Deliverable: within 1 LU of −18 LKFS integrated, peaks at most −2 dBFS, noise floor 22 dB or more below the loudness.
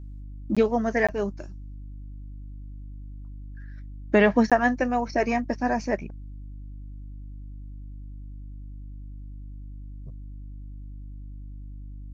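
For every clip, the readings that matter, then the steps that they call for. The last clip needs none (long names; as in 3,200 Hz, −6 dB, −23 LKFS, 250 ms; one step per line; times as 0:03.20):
number of dropouts 3; longest dropout 16 ms; mains hum 50 Hz; hum harmonics up to 300 Hz; level of the hum −36 dBFS; integrated loudness −24.0 LKFS; sample peak −6.0 dBFS; target loudness −18.0 LKFS
→ repair the gap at 0:00.55/0:01.07/0:04.50, 16 ms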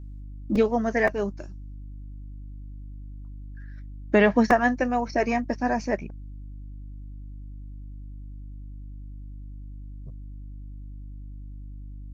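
number of dropouts 0; mains hum 50 Hz; hum harmonics up to 300 Hz; level of the hum −36 dBFS
→ hum removal 50 Hz, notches 6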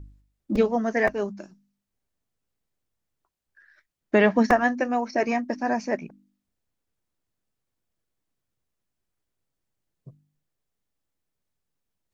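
mains hum none found; integrated loudness −24.0 LKFS; sample peak −6.5 dBFS; target loudness −18.0 LKFS
→ level +6 dB
brickwall limiter −2 dBFS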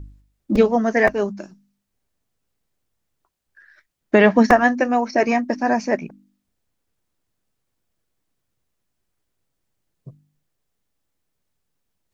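integrated loudness −18.0 LKFS; sample peak −2.0 dBFS; background noise floor −76 dBFS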